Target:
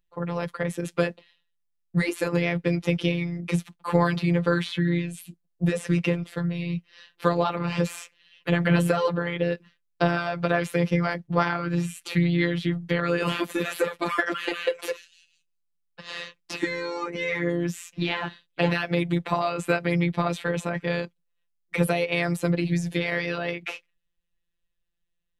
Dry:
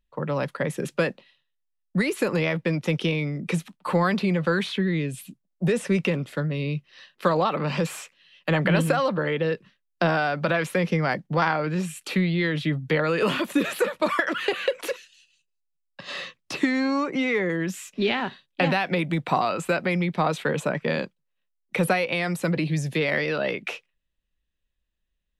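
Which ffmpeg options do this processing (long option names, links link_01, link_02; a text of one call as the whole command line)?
ffmpeg -i in.wav -filter_complex "[0:a]afftfilt=real='hypot(re,im)*cos(PI*b)':imag='0':win_size=1024:overlap=0.75,asplit=2[link_01][link_02];[link_02]asetrate=37084,aresample=44100,atempo=1.18921,volume=-17dB[link_03];[link_01][link_03]amix=inputs=2:normalize=0,volume=1.5dB" out.wav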